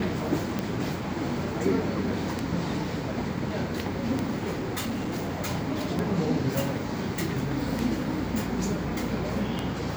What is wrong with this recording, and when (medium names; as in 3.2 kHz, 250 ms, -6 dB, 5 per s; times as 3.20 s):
tick 33 1/3 rpm -14 dBFS
4.55–5.32 s: clipped -26.5 dBFS